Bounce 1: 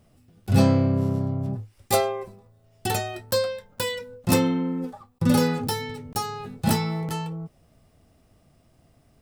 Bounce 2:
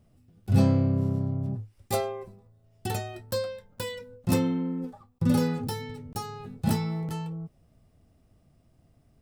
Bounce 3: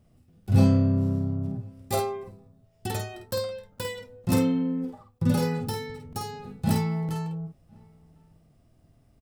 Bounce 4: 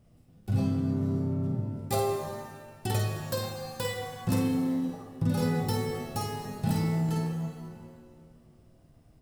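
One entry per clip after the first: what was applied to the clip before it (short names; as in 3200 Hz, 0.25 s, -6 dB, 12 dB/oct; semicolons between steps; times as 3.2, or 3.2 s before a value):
low shelf 350 Hz +7.5 dB; gain -8.5 dB
doubler 50 ms -5 dB; outdoor echo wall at 180 m, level -29 dB
compressor 5:1, threshold -25 dBFS, peak gain reduction 11 dB; shimmer reverb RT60 1.6 s, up +7 st, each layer -8 dB, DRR 4.5 dB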